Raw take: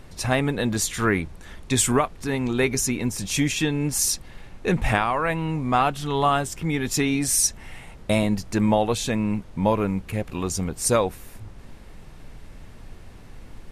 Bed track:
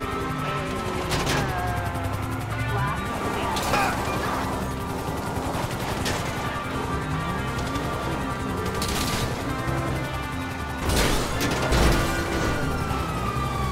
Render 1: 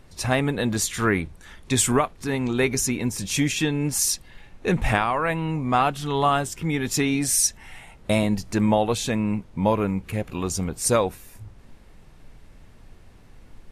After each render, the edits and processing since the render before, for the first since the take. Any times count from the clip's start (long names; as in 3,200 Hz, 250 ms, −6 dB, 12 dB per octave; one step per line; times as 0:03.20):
noise reduction from a noise print 6 dB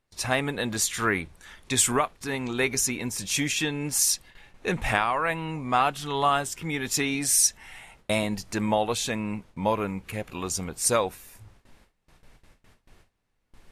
noise gate with hold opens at −37 dBFS
low-shelf EQ 480 Hz −8.5 dB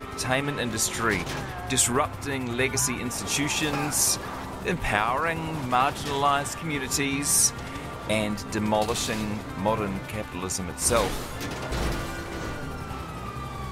mix in bed track −8.5 dB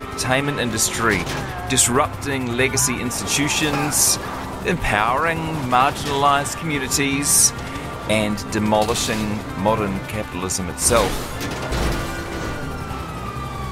level +6.5 dB
brickwall limiter −2 dBFS, peak gain reduction 3 dB